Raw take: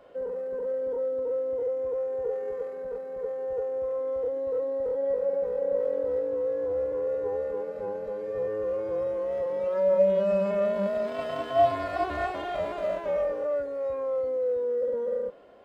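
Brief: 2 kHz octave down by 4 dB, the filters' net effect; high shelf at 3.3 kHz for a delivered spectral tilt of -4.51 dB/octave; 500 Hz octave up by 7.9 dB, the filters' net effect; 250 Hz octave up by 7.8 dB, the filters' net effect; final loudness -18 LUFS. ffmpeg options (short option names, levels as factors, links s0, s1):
-af "equalizer=f=250:t=o:g=8.5,equalizer=f=500:t=o:g=7.5,equalizer=f=2000:t=o:g=-5,highshelf=f=3300:g=-4.5,volume=1.41"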